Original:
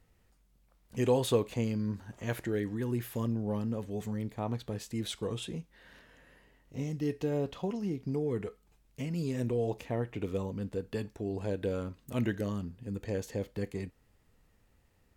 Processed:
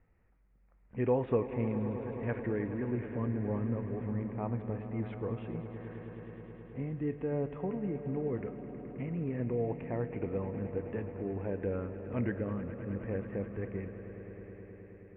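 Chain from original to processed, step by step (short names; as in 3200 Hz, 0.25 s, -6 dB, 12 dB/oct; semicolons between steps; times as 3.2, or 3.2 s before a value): steep low-pass 2400 Hz 48 dB/oct; swelling echo 0.106 s, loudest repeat 5, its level -15 dB; gain -2 dB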